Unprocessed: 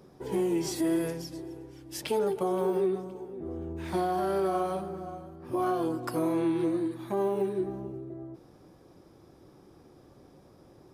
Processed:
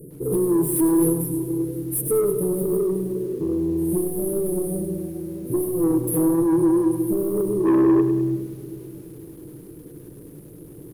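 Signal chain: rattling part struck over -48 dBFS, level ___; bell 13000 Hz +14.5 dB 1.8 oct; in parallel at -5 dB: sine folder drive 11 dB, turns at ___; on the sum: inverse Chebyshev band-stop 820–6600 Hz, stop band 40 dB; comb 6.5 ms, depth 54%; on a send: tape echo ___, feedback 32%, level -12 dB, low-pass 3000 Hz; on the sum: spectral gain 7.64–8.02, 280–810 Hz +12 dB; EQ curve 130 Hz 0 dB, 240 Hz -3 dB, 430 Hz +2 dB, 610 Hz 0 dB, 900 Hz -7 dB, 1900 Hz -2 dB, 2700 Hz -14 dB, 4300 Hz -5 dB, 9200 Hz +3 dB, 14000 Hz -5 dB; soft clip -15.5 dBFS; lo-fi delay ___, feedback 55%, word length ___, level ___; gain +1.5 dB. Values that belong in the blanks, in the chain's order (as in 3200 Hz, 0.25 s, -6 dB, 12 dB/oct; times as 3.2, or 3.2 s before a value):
-38 dBFS, -14.5 dBFS, 0.616 s, 0.1 s, 8-bit, -10.5 dB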